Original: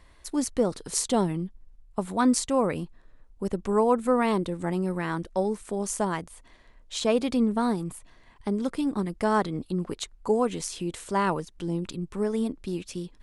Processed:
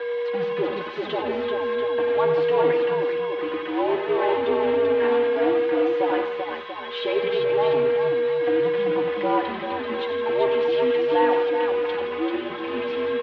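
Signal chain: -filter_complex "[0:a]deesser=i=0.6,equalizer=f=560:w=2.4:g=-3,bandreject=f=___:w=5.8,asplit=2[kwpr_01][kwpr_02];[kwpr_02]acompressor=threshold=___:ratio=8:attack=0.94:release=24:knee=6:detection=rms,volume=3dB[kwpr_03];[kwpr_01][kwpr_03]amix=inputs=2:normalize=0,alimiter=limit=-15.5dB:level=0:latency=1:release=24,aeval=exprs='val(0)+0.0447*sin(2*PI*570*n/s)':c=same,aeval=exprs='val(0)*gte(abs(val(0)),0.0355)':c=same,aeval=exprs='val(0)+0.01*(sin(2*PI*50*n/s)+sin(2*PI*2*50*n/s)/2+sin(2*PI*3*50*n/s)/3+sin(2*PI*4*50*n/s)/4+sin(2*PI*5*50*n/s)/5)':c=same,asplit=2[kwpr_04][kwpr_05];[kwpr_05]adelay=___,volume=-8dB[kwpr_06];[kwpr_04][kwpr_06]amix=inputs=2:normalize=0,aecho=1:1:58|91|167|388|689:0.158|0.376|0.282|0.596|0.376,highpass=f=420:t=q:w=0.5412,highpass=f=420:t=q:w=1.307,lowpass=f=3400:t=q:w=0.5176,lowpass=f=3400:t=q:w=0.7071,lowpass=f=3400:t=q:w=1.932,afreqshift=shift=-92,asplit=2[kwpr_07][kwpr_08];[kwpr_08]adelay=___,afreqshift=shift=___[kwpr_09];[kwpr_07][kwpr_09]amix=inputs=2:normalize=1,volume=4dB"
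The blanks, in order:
1400, -34dB, 12, 3.7, 0.35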